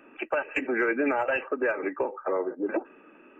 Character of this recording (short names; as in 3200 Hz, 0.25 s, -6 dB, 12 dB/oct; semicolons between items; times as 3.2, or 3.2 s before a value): noise floor -54 dBFS; spectral tilt +2.0 dB/oct